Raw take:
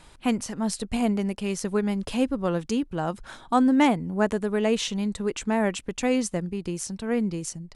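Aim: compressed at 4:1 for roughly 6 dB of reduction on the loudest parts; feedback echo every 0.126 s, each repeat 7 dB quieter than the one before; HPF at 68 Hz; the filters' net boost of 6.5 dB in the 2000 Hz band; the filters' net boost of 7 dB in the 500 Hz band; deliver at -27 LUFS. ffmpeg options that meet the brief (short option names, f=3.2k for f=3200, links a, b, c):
-af "highpass=68,equalizer=f=500:t=o:g=8,equalizer=f=2k:t=o:g=7.5,acompressor=threshold=-19dB:ratio=4,aecho=1:1:126|252|378|504|630:0.447|0.201|0.0905|0.0407|0.0183,volume=-2.5dB"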